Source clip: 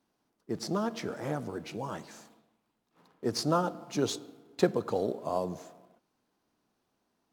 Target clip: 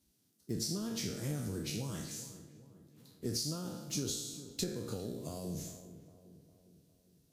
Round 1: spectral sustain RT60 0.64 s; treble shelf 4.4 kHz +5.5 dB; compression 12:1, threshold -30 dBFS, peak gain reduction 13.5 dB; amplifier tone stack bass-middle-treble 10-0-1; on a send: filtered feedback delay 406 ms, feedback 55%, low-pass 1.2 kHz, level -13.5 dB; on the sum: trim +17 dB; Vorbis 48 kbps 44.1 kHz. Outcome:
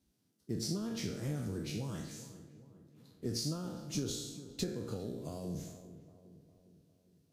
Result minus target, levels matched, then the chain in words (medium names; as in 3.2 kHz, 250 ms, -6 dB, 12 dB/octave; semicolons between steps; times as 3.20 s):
8 kHz band -3.5 dB
spectral sustain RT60 0.64 s; treble shelf 4.4 kHz +15 dB; compression 12:1, threshold -30 dBFS, peak gain reduction 14 dB; amplifier tone stack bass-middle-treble 10-0-1; on a send: filtered feedback delay 406 ms, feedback 55%, low-pass 1.2 kHz, level -13.5 dB; on the sum: trim +17 dB; Vorbis 48 kbps 44.1 kHz